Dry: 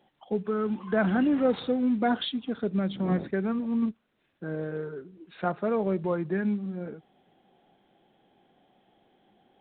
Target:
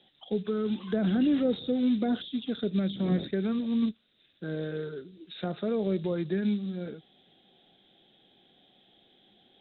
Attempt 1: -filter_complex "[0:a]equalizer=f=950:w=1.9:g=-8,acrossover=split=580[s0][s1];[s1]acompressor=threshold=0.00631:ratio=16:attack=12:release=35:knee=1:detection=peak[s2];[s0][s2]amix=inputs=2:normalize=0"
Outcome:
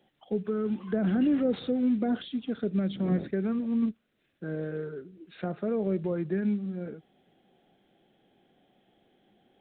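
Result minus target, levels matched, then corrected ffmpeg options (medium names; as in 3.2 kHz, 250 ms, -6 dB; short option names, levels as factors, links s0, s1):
4 kHz band -6.0 dB
-filter_complex "[0:a]lowpass=f=3700:t=q:w=10,equalizer=f=950:w=1.9:g=-8,acrossover=split=580[s0][s1];[s1]acompressor=threshold=0.00631:ratio=16:attack=12:release=35:knee=1:detection=peak[s2];[s0][s2]amix=inputs=2:normalize=0"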